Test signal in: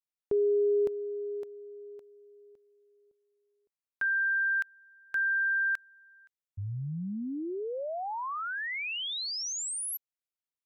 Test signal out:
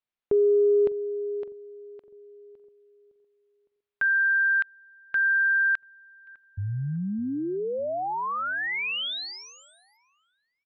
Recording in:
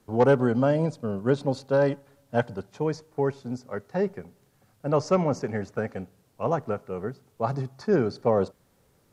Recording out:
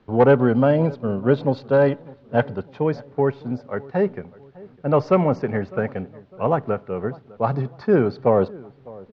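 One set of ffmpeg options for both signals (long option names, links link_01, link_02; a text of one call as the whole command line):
ffmpeg -i in.wav -filter_complex "[0:a]lowpass=frequency=3700:width=0.5412,lowpass=frequency=3700:width=1.3066,acontrast=44,asplit=2[link_01][link_02];[link_02]adelay=604,lowpass=frequency=1200:poles=1,volume=-21dB,asplit=2[link_03][link_04];[link_04]adelay=604,lowpass=frequency=1200:poles=1,volume=0.46,asplit=2[link_05][link_06];[link_06]adelay=604,lowpass=frequency=1200:poles=1,volume=0.46[link_07];[link_03][link_05][link_07]amix=inputs=3:normalize=0[link_08];[link_01][link_08]amix=inputs=2:normalize=0" out.wav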